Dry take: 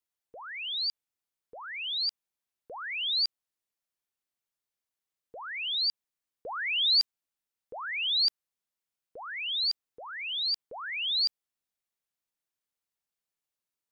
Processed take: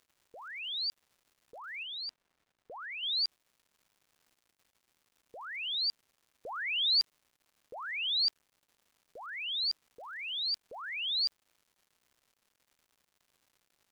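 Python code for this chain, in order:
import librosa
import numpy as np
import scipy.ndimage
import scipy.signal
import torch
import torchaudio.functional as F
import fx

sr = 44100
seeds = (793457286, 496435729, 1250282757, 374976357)

y = fx.dmg_crackle(x, sr, seeds[0], per_s=300.0, level_db=-53.0)
y = fx.high_shelf(y, sr, hz=4000.0, db=-11.5, at=(1.83, 3.03))
y = y * librosa.db_to_amplitude(-3.5)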